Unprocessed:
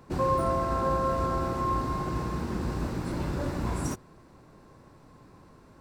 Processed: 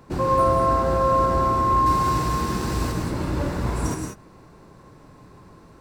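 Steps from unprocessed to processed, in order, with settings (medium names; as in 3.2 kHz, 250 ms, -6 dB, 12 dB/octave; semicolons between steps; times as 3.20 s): 1.86–2.92 s: treble shelf 2.6 kHz +10.5 dB; gated-style reverb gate 210 ms rising, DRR 2 dB; trim +3.5 dB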